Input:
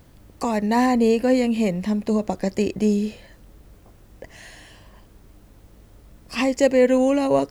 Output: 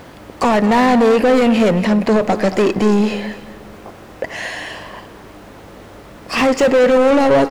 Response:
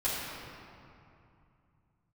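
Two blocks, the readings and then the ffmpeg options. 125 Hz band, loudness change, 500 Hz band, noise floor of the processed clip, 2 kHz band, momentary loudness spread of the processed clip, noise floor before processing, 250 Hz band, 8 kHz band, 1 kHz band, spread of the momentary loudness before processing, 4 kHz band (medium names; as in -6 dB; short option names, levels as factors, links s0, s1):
+7.5 dB, +6.5 dB, +7.5 dB, -39 dBFS, +10.5 dB, 17 LU, -51 dBFS, +5.5 dB, +4.5 dB, +9.5 dB, 8 LU, +9.0 dB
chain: -filter_complex "[0:a]asplit=2[s0][s1];[s1]highpass=f=720:p=1,volume=31.6,asoftclip=type=tanh:threshold=0.562[s2];[s0][s2]amix=inputs=2:normalize=0,lowpass=f=1600:p=1,volume=0.501,aecho=1:1:229:0.188,asplit=2[s3][s4];[1:a]atrim=start_sample=2205,adelay=91[s5];[s4][s5]afir=irnorm=-1:irlink=0,volume=0.0398[s6];[s3][s6]amix=inputs=2:normalize=0"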